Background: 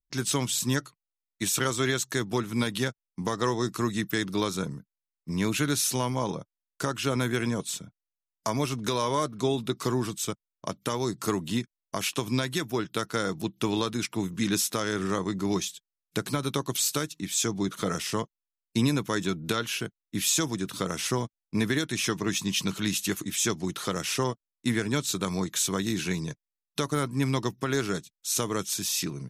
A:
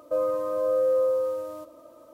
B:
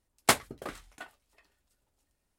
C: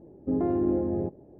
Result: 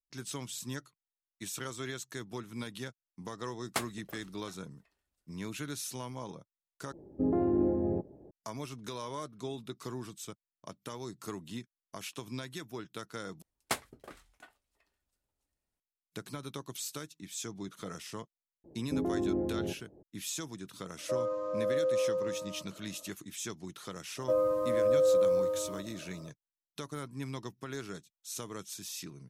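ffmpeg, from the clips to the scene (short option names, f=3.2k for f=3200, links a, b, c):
-filter_complex "[2:a]asplit=2[a][b];[3:a]asplit=2[c][d];[1:a]asplit=2[e][f];[0:a]volume=-13dB[g];[e]aresample=16000,aresample=44100[h];[f]lowshelf=f=210:g=11[i];[g]asplit=3[j][k][l];[j]atrim=end=6.924[m];[c]atrim=end=1.39,asetpts=PTS-STARTPTS,volume=-2.5dB[n];[k]atrim=start=8.306:end=13.424[o];[b]atrim=end=2.38,asetpts=PTS-STARTPTS,volume=-10dB[p];[l]atrim=start=15.796[q];[a]atrim=end=2.38,asetpts=PTS-STARTPTS,volume=-10.5dB,afade=t=in:d=0.004:c=hsin,afade=t=out:st=2.376:d=0.004:c=hsin,adelay=3470[r];[d]atrim=end=1.39,asetpts=PTS-STARTPTS,volume=-6dB,afade=t=in:d=0.004:c=hsin,afade=t=out:st=1.386:d=0.004:c=hsin,adelay=18640[s];[h]atrim=end=2.13,asetpts=PTS-STARTPTS,volume=-7dB,afade=t=in:d=0.004:c=hsin,afade=t=out:st=2.126:d=0.004:c=hsin,adelay=20980[t];[i]atrim=end=2.13,asetpts=PTS-STARTPTS,volume=-4dB,afade=t=in:d=0.004:c=hsin,afade=t=out:st=2.126:d=0.004:c=hsin,adelay=24170[u];[m][n]acrossfade=d=0.004:c1=hsin:c2=hsin[v];[v][o]acrossfade=d=0.004:c1=hsin:c2=hsin[w];[w][p]acrossfade=d=0.004:c1=hsin:c2=hsin[x];[x][q]acrossfade=d=0.004:c1=hsin:c2=hsin[y];[y][r][s][t][u]amix=inputs=5:normalize=0"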